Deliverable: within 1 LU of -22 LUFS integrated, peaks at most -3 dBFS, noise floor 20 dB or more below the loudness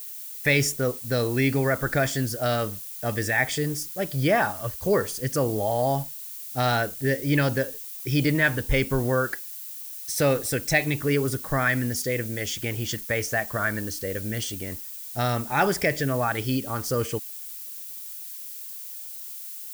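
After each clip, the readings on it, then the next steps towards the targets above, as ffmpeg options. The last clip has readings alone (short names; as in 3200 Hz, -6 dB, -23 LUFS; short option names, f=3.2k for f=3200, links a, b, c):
noise floor -38 dBFS; noise floor target -46 dBFS; loudness -26.0 LUFS; peak -8.0 dBFS; loudness target -22.0 LUFS
-> -af "afftdn=nr=8:nf=-38"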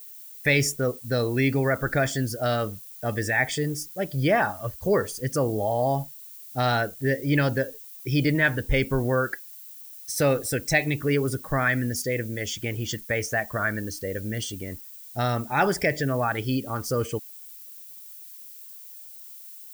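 noise floor -44 dBFS; noise floor target -46 dBFS
-> -af "afftdn=nr=6:nf=-44"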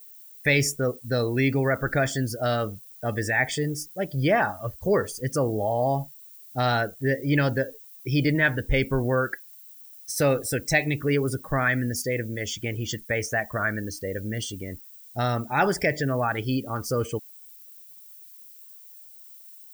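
noise floor -48 dBFS; loudness -26.0 LUFS; peak -7.5 dBFS; loudness target -22.0 LUFS
-> -af "volume=4dB"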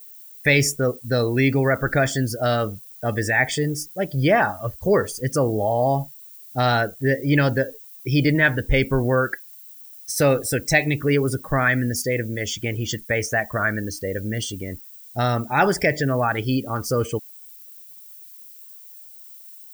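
loudness -22.0 LUFS; peak -3.5 dBFS; noise floor -44 dBFS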